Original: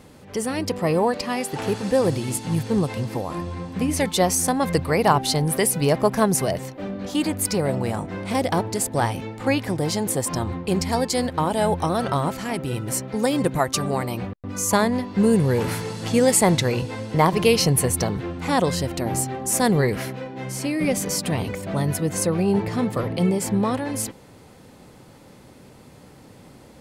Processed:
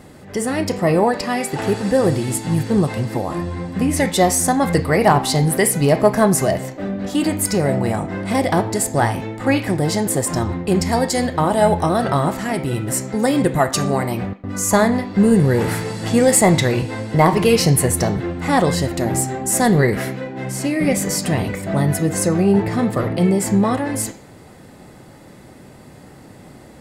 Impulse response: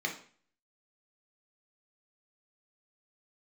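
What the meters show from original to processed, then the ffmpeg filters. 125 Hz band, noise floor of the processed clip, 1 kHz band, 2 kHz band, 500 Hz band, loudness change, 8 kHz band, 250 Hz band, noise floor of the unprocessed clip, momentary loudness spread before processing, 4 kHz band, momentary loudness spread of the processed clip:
+5.0 dB, −43 dBFS, +4.5 dB, +5.5 dB, +4.5 dB, +4.5 dB, +3.5 dB, +5.0 dB, −48 dBFS, 9 LU, +1.5 dB, 8 LU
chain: -filter_complex "[0:a]acontrast=42,asplit=2[link_01][link_02];[link_02]highpass=frequency=600:poles=1[link_03];[1:a]atrim=start_sample=2205[link_04];[link_03][link_04]afir=irnorm=-1:irlink=0,volume=-8.5dB[link_05];[link_01][link_05]amix=inputs=2:normalize=0,volume=-1dB"

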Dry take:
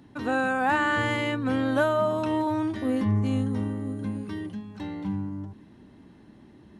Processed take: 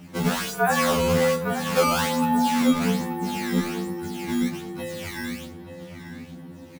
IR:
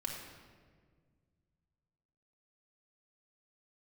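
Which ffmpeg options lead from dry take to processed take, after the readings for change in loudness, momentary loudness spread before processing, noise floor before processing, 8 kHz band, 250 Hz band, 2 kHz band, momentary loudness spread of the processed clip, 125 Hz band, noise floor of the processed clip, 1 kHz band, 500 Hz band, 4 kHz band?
+3.0 dB, 12 LU, −52 dBFS, can't be measured, +2.5 dB, 0.0 dB, 19 LU, 0.0 dB, −42 dBFS, +3.5 dB, +3.5 dB, +8.5 dB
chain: -filter_complex "[0:a]highpass=frequency=200:width=0.5412,highpass=frequency=200:width=1.3066,lowshelf=frequency=270:gain=9.5,acompressor=threshold=-26dB:ratio=3,afreqshift=-68,acrusher=samples=14:mix=1:aa=0.000001:lfo=1:lforange=22.4:lforate=1.2,asplit=2[link_01][link_02];[link_02]adelay=33,volume=-13dB[link_03];[link_01][link_03]amix=inputs=2:normalize=0,asplit=2[link_04][link_05];[link_05]adelay=881,lowpass=frequency=2200:poles=1,volume=-9dB,asplit=2[link_06][link_07];[link_07]adelay=881,lowpass=frequency=2200:poles=1,volume=0.36,asplit=2[link_08][link_09];[link_09]adelay=881,lowpass=frequency=2200:poles=1,volume=0.36,asplit=2[link_10][link_11];[link_11]adelay=881,lowpass=frequency=2200:poles=1,volume=0.36[link_12];[link_04][link_06][link_08][link_10][link_12]amix=inputs=5:normalize=0,asplit=2[link_13][link_14];[1:a]atrim=start_sample=2205[link_15];[link_14][link_15]afir=irnorm=-1:irlink=0,volume=-12dB[link_16];[link_13][link_16]amix=inputs=2:normalize=0,afftfilt=real='re*2*eq(mod(b,4),0)':imag='im*2*eq(mod(b,4),0)':win_size=2048:overlap=0.75,volume=8dB"

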